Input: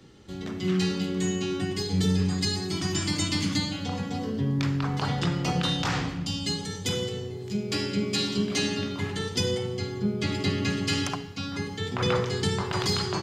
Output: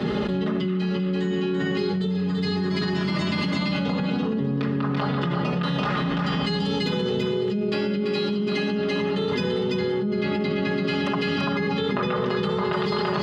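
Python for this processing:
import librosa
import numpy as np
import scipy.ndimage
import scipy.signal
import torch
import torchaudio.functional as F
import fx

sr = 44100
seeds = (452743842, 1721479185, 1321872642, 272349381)

y = scipy.signal.sosfilt(scipy.signal.butter(2, 96.0, 'highpass', fs=sr, output='sos'), x)
y = fx.high_shelf(y, sr, hz=3300.0, db=8.5)
y = fx.notch(y, sr, hz=2300.0, q=16.0)
y = y + 0.96 * np.pad(y, (int(4.8 * sr / 1000.0), 0))[:len(y)]
y = fx.small_body(y, sr, hz=(560.0, 1200.0), ring_ms=45, db=8)
y = fx.tremolo_random(y, sr, seeds[0], hz=3.5, depth_pct=55)
y = fx.air_absorb(y, sr, metres=450.0)
y = y + 10.0 ** (-5.0 / 20.0) * np.pad(y, (int(337 * sr / 1000.0), 0))[:len(y)]
y = fx.env_flatten(y, sr, amount_pct=100)
y = y * 10.0 ** (-6.5 / 20.0)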